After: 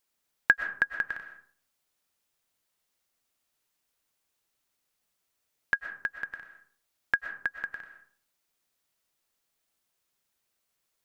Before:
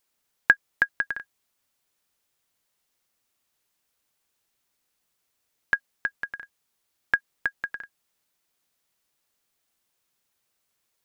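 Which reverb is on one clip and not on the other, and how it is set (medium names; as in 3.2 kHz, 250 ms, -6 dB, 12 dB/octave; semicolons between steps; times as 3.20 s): algorithmic reverb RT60 0.53 s, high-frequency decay 0.5×, pre-delay 80 ms, DRR 7.5 dB; trim -3.5 dB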